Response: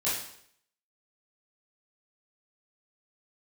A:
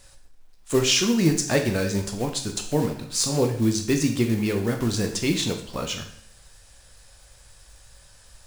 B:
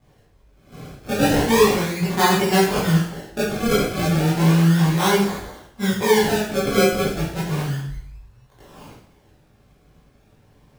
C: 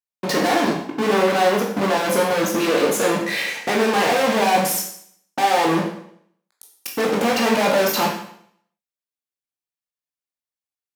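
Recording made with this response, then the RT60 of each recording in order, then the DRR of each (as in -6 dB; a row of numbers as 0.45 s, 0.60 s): B; 0.65 s, 0.65 s, 0.65 s; 4.0 dB, -10.0 dB, -1.0 dB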